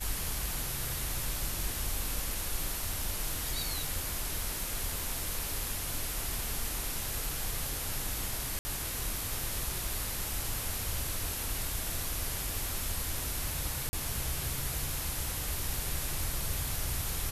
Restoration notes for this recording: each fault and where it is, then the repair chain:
8.59–8.65 gap 60 ms
13.89–13.93 gap 40 ms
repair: interpolate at 8.59, 60 ms; interpolate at 13.89, 40 ms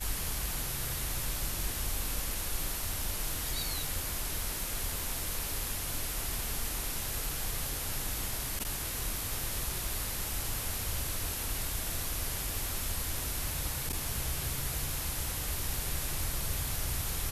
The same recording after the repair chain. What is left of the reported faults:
none

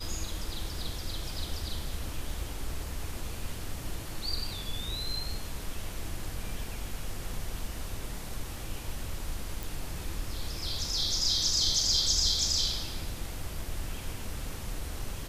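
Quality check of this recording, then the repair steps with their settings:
9.63 pop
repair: de-click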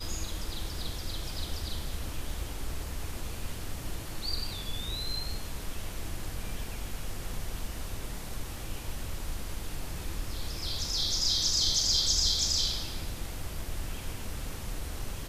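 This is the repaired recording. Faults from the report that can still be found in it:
none

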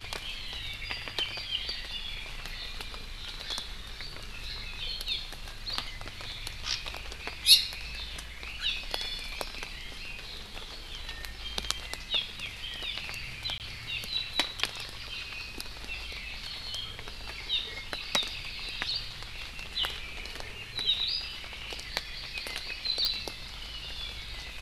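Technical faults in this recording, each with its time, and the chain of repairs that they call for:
13.58–13.6 gap 18 ms
23.05 pop -12 dBFS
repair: de-click; interpolate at 13.58, 18 ms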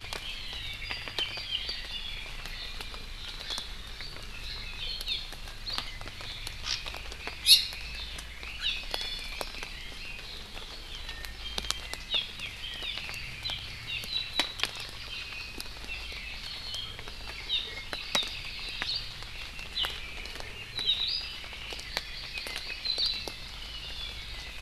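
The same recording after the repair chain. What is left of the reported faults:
none

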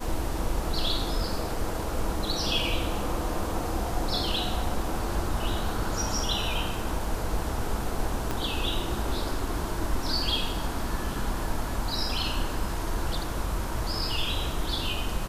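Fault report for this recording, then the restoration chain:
8.31 pop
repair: de-click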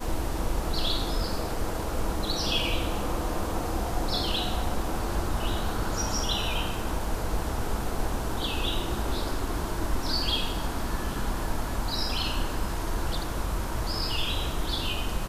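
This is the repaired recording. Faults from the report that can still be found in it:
8.31 pop

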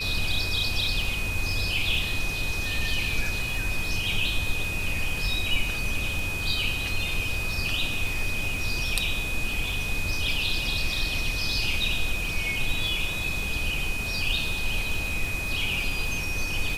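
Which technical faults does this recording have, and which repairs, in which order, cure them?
crackle 33/s -32 dBFS
tone 2500 Hz -30 dBFS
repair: de-click; notch 2500 Hz, Q 30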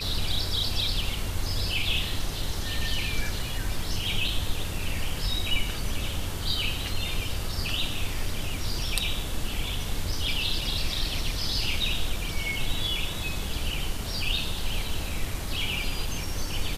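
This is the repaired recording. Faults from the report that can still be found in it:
none

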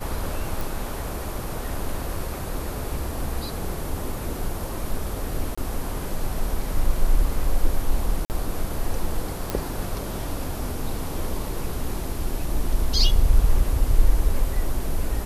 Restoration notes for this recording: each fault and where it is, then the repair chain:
0.61 pop
5.55–5.58 gap 25 ms
8.25–8.3 gap 49 ms
9.5 pop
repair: de-click; interpolate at 5.55, 25 ms; interpolate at 8.25, 49 ms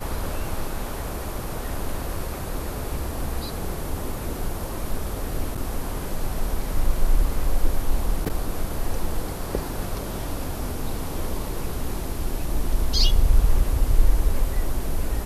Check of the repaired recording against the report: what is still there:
none

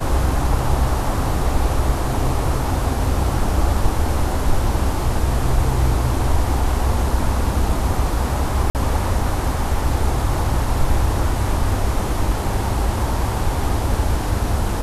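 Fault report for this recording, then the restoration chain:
8.7–8.75 gap 48 ms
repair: interpolate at 8.7, 48 ms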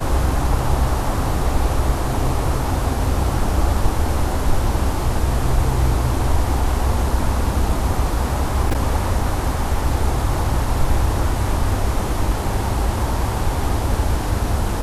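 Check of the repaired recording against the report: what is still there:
none

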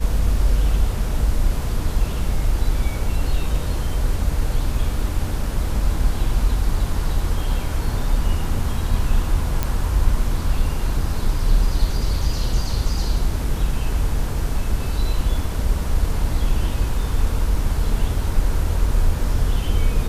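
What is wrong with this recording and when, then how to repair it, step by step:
9.63 pop -6 dBFS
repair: de-click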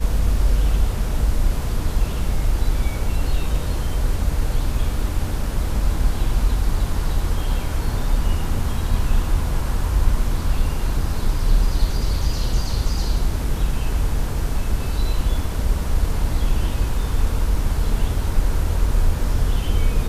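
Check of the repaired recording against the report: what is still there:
none

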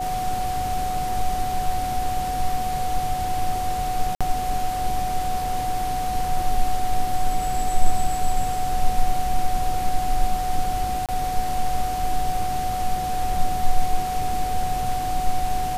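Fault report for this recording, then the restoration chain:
tone 740 Hz -24 dBFS
4.15–4.21 gap 56 ms
11.06–11.09 gap 27 ms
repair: notch 740 Hz, Q 30; interpolate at 4.15, 56 ms; interpolate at 11.06, 27 ms

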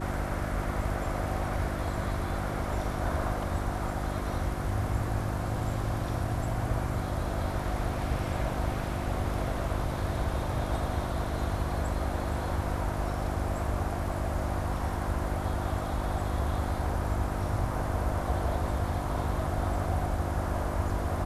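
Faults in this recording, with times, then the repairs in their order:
hum 50 Hz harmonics 7 -35 dBFS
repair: de-hum 50 Hz, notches 7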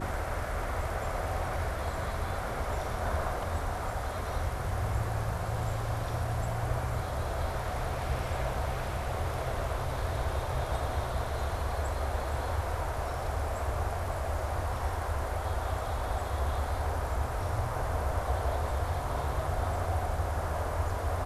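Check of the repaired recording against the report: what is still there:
none

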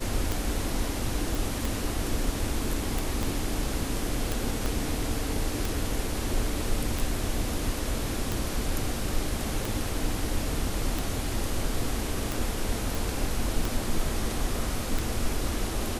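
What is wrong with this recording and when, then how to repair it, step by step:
tick 45 rpm
1.35 pop
3.23 pop
4.66 pop
12.95 pop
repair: de-click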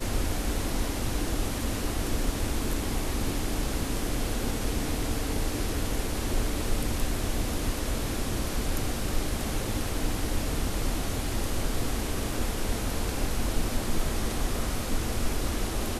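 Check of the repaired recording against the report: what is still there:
3.23 pop
4.66 pop

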